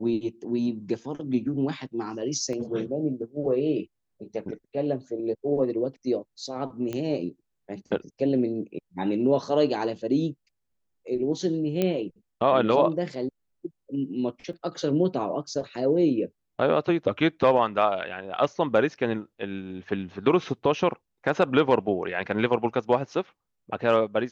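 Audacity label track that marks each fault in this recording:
2.530000	2.530000	dropout 2.1 ms
6.930000	6.930000	pop -19 dBFS
11.820000	11.820000	pop -12 dBFS
14.530000	14.530000	dropout 2.3 ms

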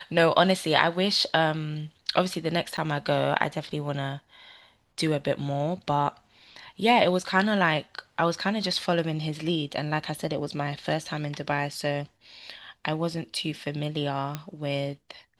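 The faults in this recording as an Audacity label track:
2.770000	2.780000	dropout 8.5 ms
14.350000	14.350000	pop -16 dBFS

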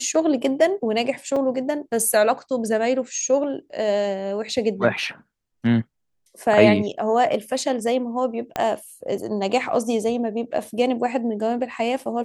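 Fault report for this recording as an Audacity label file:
1.360000	1.360000	dropout 4.1 ms
8.560000	8.560000	pop -10 dBFS

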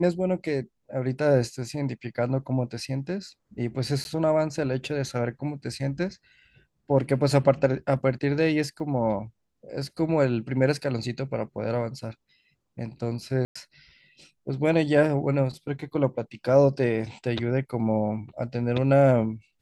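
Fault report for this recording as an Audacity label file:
4.040000	4.050000	dropout
8.800000	8.800000	dropout 3 ms
13.450000	13.550000	dropout 105 ms

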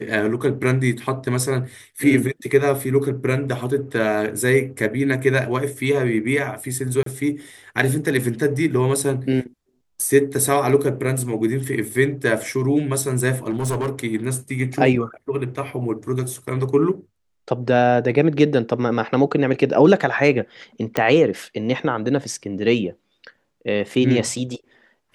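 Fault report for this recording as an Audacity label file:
7.030000	7.060000	dropout 33 ms
13.490000	13.900000	clipped -18.5 dBFS
20.970000	20.970000	pop -6 dBFS

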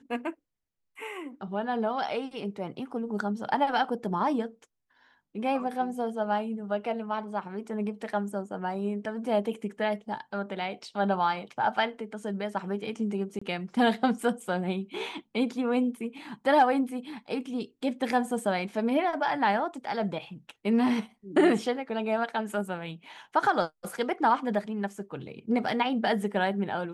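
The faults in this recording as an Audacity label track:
13.390000	13.410000	dropout 25 ms

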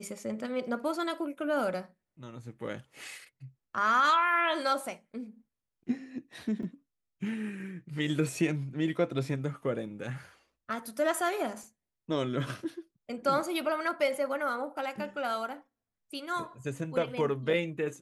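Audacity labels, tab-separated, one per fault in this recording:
6.630000	6.630000	dropout 2.5 ms

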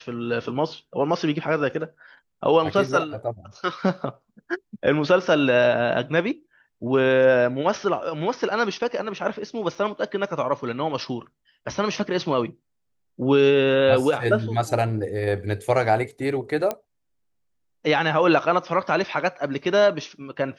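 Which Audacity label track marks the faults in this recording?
9.750000	9.750000	dropout 3.4 ms
16.710000	16.710000	pop -12 dBFS

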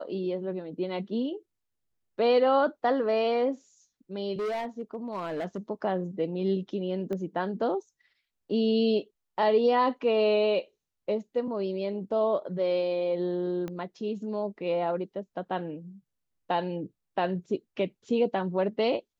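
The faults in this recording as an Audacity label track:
4.350000	5.580000	clipped -28 dBFS
7.130000	7.130000	pop -23 dBFS
13.680000	13.680000	pop -23 dBFS

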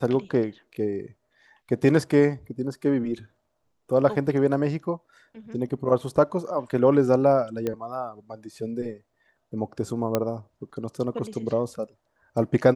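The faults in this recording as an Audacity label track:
7.670000	7.670000	pop -15 dBFS
10.150000	10.150000	pop -9 dBFS

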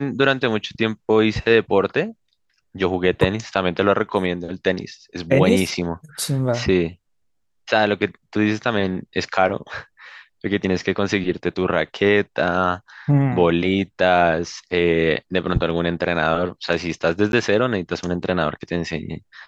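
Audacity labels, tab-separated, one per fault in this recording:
17.320000	17.330000	dropout 11 ms

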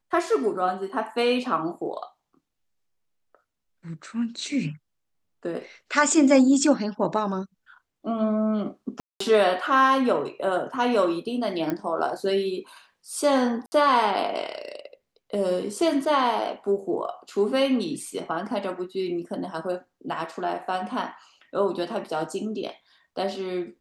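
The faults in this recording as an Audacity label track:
9.000000	9.200000	dropout 204 ms
11.700000	11.700000	pop -15 dBFS
13.660000	13.720000	dropout 60 ms

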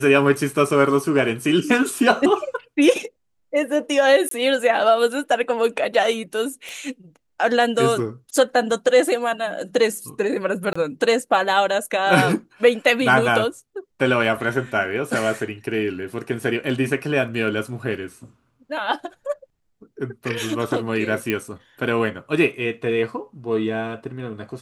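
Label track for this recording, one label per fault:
4.290000	4.310000	dropout 23 ms
6.690000	6.690000	pop -20 dBFS
10.730000	10.760000	dropout 25 ms
21.300000	21.300000	pop -9 dBFS

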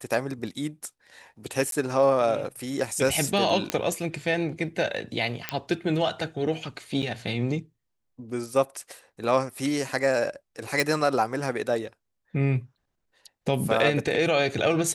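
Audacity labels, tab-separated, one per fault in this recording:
1.710000	1.720000	dropout 12 ms
3.700000	3.700000	pop -9 dBFS
5.490000	5.490000	pop -10 dBFS
7.020000	7.030000	dropout 7 ms
10.800000	10.800000	pop

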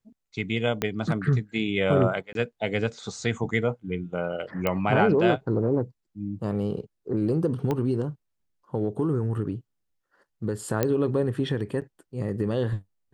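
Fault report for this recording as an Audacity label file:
0.820000	0.820000	pop -10 dBFS
2.330000	2.350000	dropout 22 ms
4.670000	4.670000	pop -12 dBFS
7.710000	7.710000	pop -15 dBFS
10.830000	10.830000	pop -9 dBFS
11.810000	11.820000	dropout 7.6 ms

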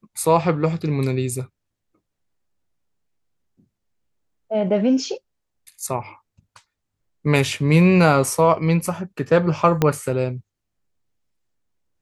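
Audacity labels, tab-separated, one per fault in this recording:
9.820000	9.820000	pop -4 dBFS

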